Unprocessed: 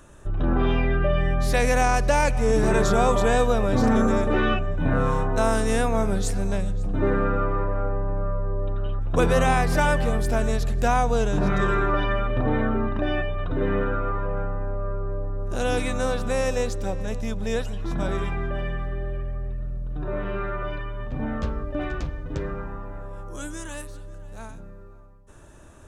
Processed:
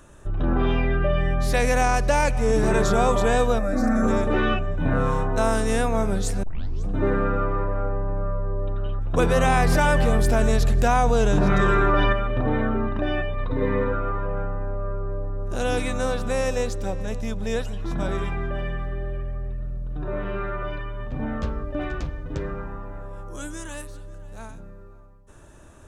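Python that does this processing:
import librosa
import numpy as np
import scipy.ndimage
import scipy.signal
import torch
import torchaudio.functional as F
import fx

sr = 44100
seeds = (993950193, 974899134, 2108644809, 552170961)

y = fx.fixed_phaser(x, sr, hz=630.0, stages=8, at=(3.58, 4.02), fade=0.02)
y = fx.env_flatten(y, sr, amount_pct=100, at=(9.43, 12.13))
y = fx.ripple_eq(y, sr, per_octave=0.96, db=11, at=(13.33, 13.93))
y = fx.edit(y, sr, fx.tape_start(start_s=6.43, length_s=0.43), tone=tone)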